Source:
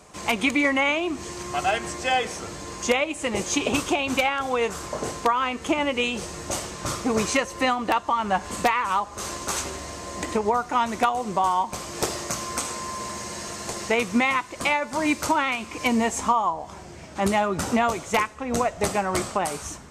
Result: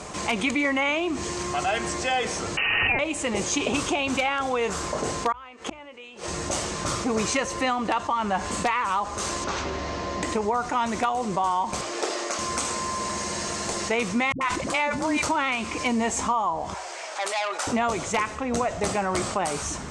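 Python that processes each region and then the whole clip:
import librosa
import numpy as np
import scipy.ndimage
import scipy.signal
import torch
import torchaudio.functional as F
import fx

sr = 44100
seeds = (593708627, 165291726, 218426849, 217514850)

y = fx.chain(x, sr, fx.freq_invert(carrier_hz=2900),
    fx.pre_swell(db_per_s=21.0), at=(2.57, 2.99))
y = fx.chain(y, sr, fx.bass_treble(bass_db=-13, treble_db=-6),
    fx.gate_flip(shuts_db=-21.0, range_db=-35), at=(5.32, 6.28))
y = fx.chain(y, sr, fx.lowpass(hz=6000.0, slope=24),
    fx.high_shelf(hz=4500.0, db=-10.5),
    fx.band_squash(depth_pct=40), at=(9.44, 10.23))
y = fx.chain(y, sr, fx.highpass(hz=310.0, slope=24),
    fx.high_shelf(hz=7700.0, db=-12.0),
    fx.notch(hz=1000.0, q=11.0), at=(11.81, 12.39))
y = fx.chain(y, sr, fx.dispersion(late='highs', ms=91.0, hz=330.0),
    fx.sustainer(db_per_s=85.0), at=(14.32, 15.23))
y = fx.chain(y, sr, fx.highpass(hz=570.0, slope=24),
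    fx.transformer_sat(knee_hz=3200.0), at=(16.74, 17.67))
y = scipy.signal.sosfilt(scipy.signal.butter(4, 9200.0, 'lowpass', fs=sr, output='sos'), y)
y = fx.hum_notches(y, sr, base_hz=60, count=2)
y = fx.env_flatten(y, sr, amount_pct=50)
y = y * librosa.db_to_amplitude(-4.5)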